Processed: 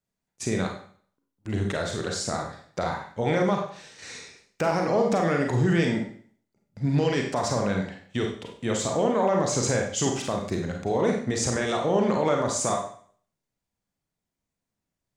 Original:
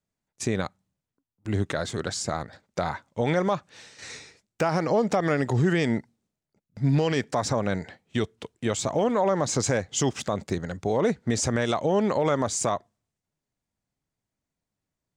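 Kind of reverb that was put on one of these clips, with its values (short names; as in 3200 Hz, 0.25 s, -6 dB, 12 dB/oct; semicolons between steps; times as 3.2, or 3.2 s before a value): Schroeder reverb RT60 0.51 s, combs from 32 ms, DRR 1 dB; gain -2 dB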